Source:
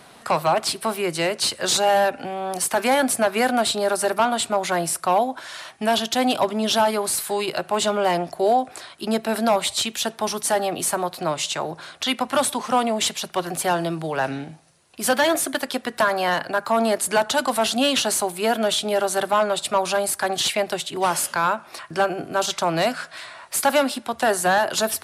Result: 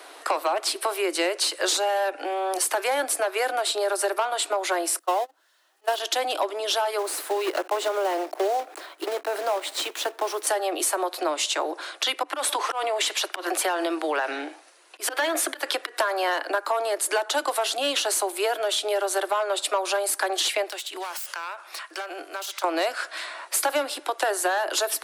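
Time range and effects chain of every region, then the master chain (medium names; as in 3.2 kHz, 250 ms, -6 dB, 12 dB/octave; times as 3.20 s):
4.99–6.00 s: jump at every zero crossing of -23.5 dBFS + gate -18 dBFS, range -41 dB + band-stop 2.3 kHz, Q 8.9
6.98–10.47 s: block-companded coder 3-bit + treble shelf 2.3 kHz -10.5 dB
12.23–15.97 s: peaking EQ 1.7 kHz +5.5 dB 2.7 oct + compression 3:1, threshold -20 dBFS + slow attack 142 ms
20.69–22.64 s: self-modulated delay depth 0.088 ms + high-pass 1.4 kHz 6 dB/octave + compression 12:1, threshold -31 dBFS
whole clip: compression, threshold -24 dBFS; Chebyshev high-pass 290 Hz, order 8; trim +3.5 dB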